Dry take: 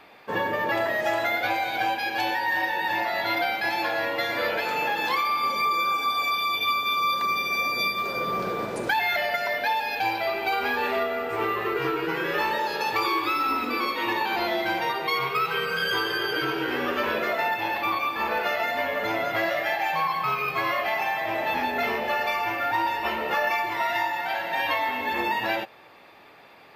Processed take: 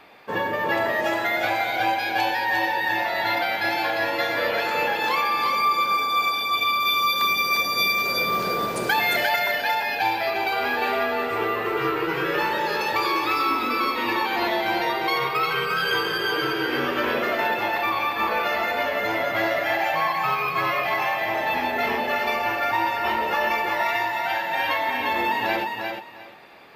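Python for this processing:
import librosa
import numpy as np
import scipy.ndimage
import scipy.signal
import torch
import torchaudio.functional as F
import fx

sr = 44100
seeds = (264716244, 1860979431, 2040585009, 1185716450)

y = fx.high_shelf(x, sr, hz=3900.0, db=8.0, at=(6.8, 9.4))
y = fx.echo_feedback(y, sr, ms=352, feedback_pct=20, wet_db=-4.5)
y = y * 10.0 ** (1.0 / 20.0)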